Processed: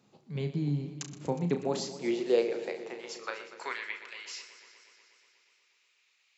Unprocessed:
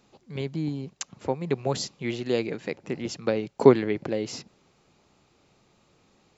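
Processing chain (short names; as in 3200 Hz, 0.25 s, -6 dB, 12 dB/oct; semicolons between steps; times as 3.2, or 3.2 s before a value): flutter echo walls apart 5.9 m, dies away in 0.25 s; high-pass sweep 140 Hz -> 2300 Hz, 1.25–3.98; warbling echo 0.121 s, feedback 78%, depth 56 cents, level -14 dB; gain -6.5 dB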